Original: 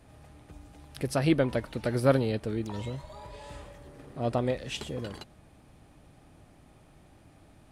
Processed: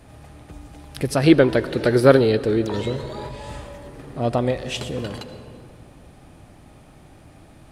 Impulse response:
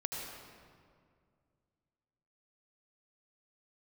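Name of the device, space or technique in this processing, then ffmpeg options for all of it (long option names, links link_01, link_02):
compressed reverb return: -filter_complex "[0:a]asplit=2[link_01][link_02];[1:a]atrim=start_sample=2205[link_03];[link_02][link_03]afir=irnorm=-1:irlink=0,acompressor=threshold=-31dB:ratio=5,volume=-6dB[link_04];[link_01][link_04]amix=inputs=2:normalize=0,asettb=1/sr,asplit=3[link_05][link_06][link_07];[link_05]atrim=end=1.234[link_08];[link_06]atrim=start=1.23:end=3.29,asetpts=PTS-STARTPTS,afade=type=in:duration=0.004:curve=qsin,afade=type=out:start_time=2.056:duration=0.004:curve=qsin,equalizer=frequency=400:width_type=o:width=0.67:gain=9,equalizer=frequency=1600:width_type=o:width=0.67:gain=6,equalizer=frequency=4000:width_type=o:width=0.67:gain=6[link_09];[link_07]atrim=start=3.286[link_10];[link_08][link_09]acrossfade=duration=0.004:curve1=hsin:curve2=qsin[link_11];[link_11][link_10]acrossfade=duration=0.004:curve1=qsin:curve2=hsin,volume=5.5dB"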